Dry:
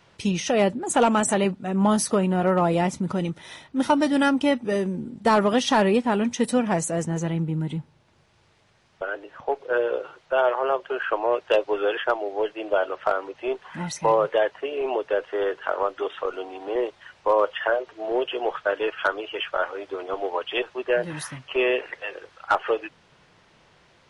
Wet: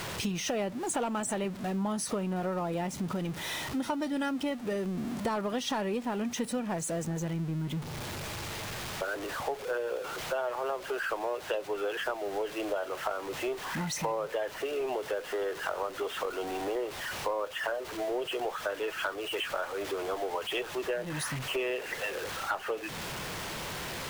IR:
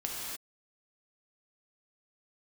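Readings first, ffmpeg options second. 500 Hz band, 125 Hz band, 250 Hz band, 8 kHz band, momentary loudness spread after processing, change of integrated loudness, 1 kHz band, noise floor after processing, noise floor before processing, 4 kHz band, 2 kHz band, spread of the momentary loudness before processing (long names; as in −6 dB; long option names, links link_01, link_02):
−9.5 dB, −7.0 dB, −9.0 dB, −4.5 dB, 4 LU, −9.0 dB, −9.5 dB, −42 dBFS, −59 dBFS, −4.0 dB, −6.5 dB, 11 LU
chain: -af "aeval=exprs='val(0)+0.5*0.0299*sgn(val(0))':channel_layout=same,acompressor=threshold=-29dB:ratio=4,volume=-2dB"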